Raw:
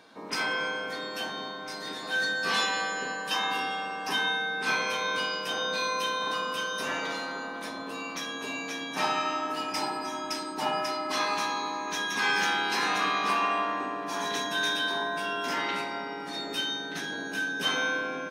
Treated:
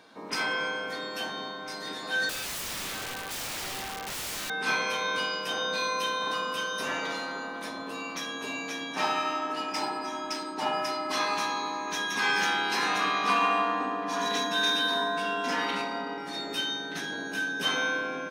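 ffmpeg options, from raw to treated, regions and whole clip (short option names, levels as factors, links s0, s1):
-filter_complex "[0:a]asettb=1/sr,asplit=3[s0][s1][s2];[s0]atrim=end=2.294[s3];[s1]atrim=start=2.29:end=4.5,asetpts=PTS-STARTPTS,afade=t=in:d=0.004:c=qsin,afade=t=out:st=2.206:d=0.004:c=qsin,lowpass=f=1800:p=1,aeval=exprs='(mod(33.5*val(0)+1,2)-1)/33.5':c=same[s4];[s2]atrim=start=4.496[s5];[s3][s4]acrossfade=d=0.004:c1=hsin:c2=qsin[s6];[s6][s5]acrossfade=d=0.004:c1=qsin:c2=hsin,asettb=1/sr,asplit=3[s7][s8][s9];[s7]atrim=end=8.924[s10];[s8]atrim=start=8.92:end=10.81,asetpts=PTS-STARTPTS,afade=t=in:d=0.004:c=qsin,afade=t=out:st=1.886:d=0.004:c=qsin,highpass=160,adynamicsmooth=sensitivity=8:basefreq=7300[s11];[s9]atrim=start=10.806[s12];[s10][s11]acrossfade=d=0.004:c1=hsin:c2=qsin[s13];[s13][s12]acrossfade=d=0.004:c1=qsin:c2=hsin,asettb=1/sr,asplit=3[s14][s15][s16];[s14]atrim=end=13.274[s17];[s15]atrim=start=13.27:end=16.18,asetpts=PTS-STARTPTS,afade=t=in:d=0.004:c=qsin,afade=t=out:st=2.906:d=0.004:c=qsin,aecho=1:1:4.1:0.75,atrim=end_sample=128331,adynamicsmooth=sensitivity=7:basefreq=7100[s18];[s16]atrim=start=16.176[s19];[s17][s18]acrossfade=d=0.004:c1=hsin:c2=qsin[s20];[s20][s19]acrossfade=d=0.004:c1=qsin:c2=hsin"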